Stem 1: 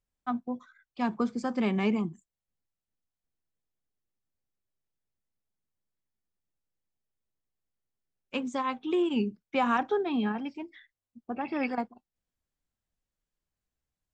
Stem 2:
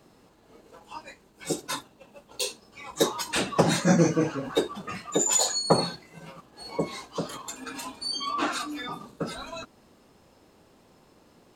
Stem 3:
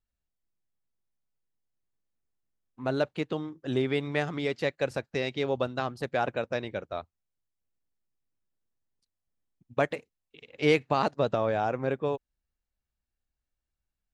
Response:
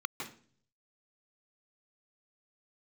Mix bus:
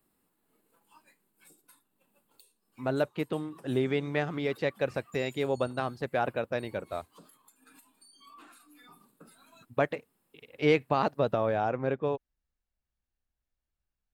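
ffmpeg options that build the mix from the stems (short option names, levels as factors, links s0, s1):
-filter_complex "[1:a]highpass=170,acompressor=threshold=0.0398:ratio=3,aexciter=amount=9.1:drive=8.8:freq=8800,volume=0.178[s0];[2:a]volume=0.944[s1];[s0]equalizer=f=580:t=o:w=1.4:g=-8.5,acompressor=threshold=0.00398:ratio=16,volume=1[s2];[s1][s2]amix=inputs=2:normalize=0,highshelf=f=5600:g=-12"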